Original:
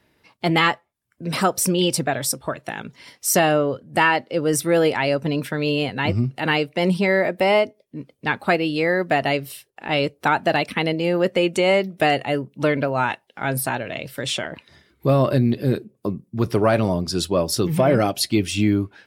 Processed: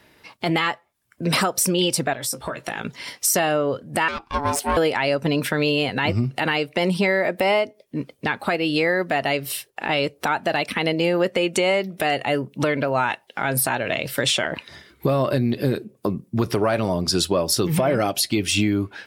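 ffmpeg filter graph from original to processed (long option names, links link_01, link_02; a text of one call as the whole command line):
ffmpeg -i in.wav -filter_complex "[0:a]asettb=1/sr,asplit=3[link_01][link_02][link_03];[link_01]atrim=end=2.134[link_04];[link_02]atrim=start=2.13:end=2.85,asetpts=PTS-STARTPTS,afade=type=in:duration=0.004:curve=qsin,afade=type=out:start_time=0.716:duration=0.004:curve=qsin,acompressor=threshold=-34dB:ratio=4:attack=3.2:release=140:knee=1:detection=peak,asplit=2[link_05][link_06];[link_06]adelay=17,volume=-7.5dB[link_07];[link_05][link_07]amix=inputs=2:normalize=0,atrim=end_sample=31752[link_08];[link_03]atrim=start=2.846[link_09];[link_04][link_08]acrossfade=duration=0.004:curve1=hsin:curve2=qsin[link_10];[link_10][link_09]acrossfade=duration=0.004:curve1=qsin:curve2=hsin,asettb=1/sr,asplit=3[link_11][link_12][link_13];[link_11]atrim=end=4.084[link_14];[link_12]atrim=start=4.08:end=4.77,asetpts=PTS-STARTPTS,afade=type=in:duration=0.004:curve=qsin,afade=type=out:start_time=0.686:duration=0.004:curve=qsin,aeval=exprs='(tanh(5.62*val(0)+0.8)-tanh(0.8))/5.62':channel_layout=same,aeval=exprs='val(0)*sin(2*PI*570*n/s)':channel_layout=same[link_15];[link_13]atrim=start=4.766[link_16];[link_14][link_15]acrossfade=duration=0.004:curve1=hsin:curve2=qsin[link_17];[link_17][link_16]acrossfade=duration=0.004:curve1=qsin:curve2=hsin,lowshelf=frequency=390:gain=-5.5,acompressor=threshold=-27dB:ratio=6,alimiter=level_in=18dB:limit=-1dB:release=50:level=0:latency=1,volume=-8dB" out.wav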